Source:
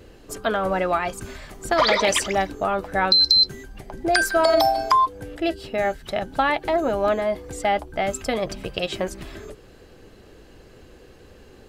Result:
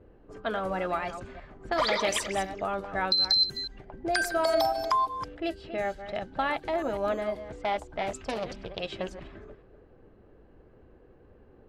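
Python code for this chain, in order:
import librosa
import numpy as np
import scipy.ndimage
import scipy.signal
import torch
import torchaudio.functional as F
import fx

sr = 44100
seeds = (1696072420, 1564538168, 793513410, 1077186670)

y = fx.reverse_delay(x, sr, ms=175, wet_db=-11)
y = fx.env_lowpass(y, sr, base_hz=1100.0, full_db=-18.0)
y = fx.doppler_dist(y, sr, depth_ms=0.31, at=(7.48, 8.81))
y = y * 10.0 ** (-8.0 / 20.0)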